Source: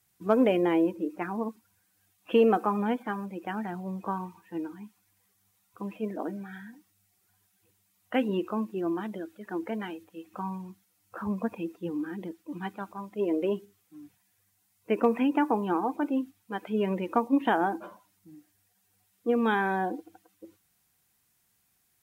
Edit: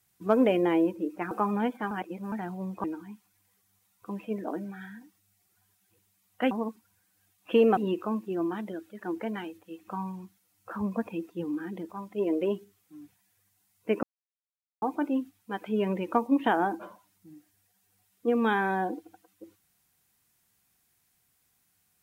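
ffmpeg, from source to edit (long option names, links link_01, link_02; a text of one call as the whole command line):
ffmpeg -i in.wav -filter_complex "[0:a]asplit=10[link_01][link_02][link_03][link_04][link_05][link_06][link_07][link_08][link_09][link_10];[link_01]atrim=end=1.312[link_11];[link_02]atrim=start=2.568:end=3.172[link_12];[link_03]atrim=start=3.168:end=3.582,asetpts=PTS-STARTPTS,areverse[link_13];[link_04]atrim=start=3.578:end=4.102[link_14];[link_05]atrim=start=4.558:end=8.232[link_15];[link_06]atrim=start=1.308:end=2.572[link_16];[link_07]atrim=start=8.228:end=12.352[link_17];[link_08]atrim=start=12.898:end=15.04,asetpts=PTS-STARTPTS,afade=type=out:start_time=2.138:duration=0.004:curve=hsin[link_18];[link_09]atrim=start=15.04:end=15.83,asetpts=PTS-STARTPTS,volume=0[link_19];[link_10]atrim=start=15.83,asetpts=PTS-STARTPTS,afade=type=in:duration=0.004:curve=hsin[link_20];[link_11][link_12]acrossfade=duration=0.004:curve1=hsin:curve2=hsin[link_21];[link_21][link_13]acrossfade=duration=0.004:curve1=hsin:curve2=hsin[link_22];[link_22][link_14]acrossfade=duration=0.004:curve1=hsin:curve2=hsin[link_23];[link_23][link_15]acrossfade=duration=0.004:curve1=hsin:curve2=hsin[link_24];[link_24][link_16]acrossfade=duration=0.004:curve1=hsin:curve2=hsin[link_25];[link_25][link_17]acrossfade=duration=0.004:curve1=hsin:curve2=hsin[link_26];[link_18][link_19][link_20]concat=n=3:v=0:a=1[link_27];[link_26][link_27]acrossfade=duration=0.004:curve1=hsin:curve2=hsin" out.wav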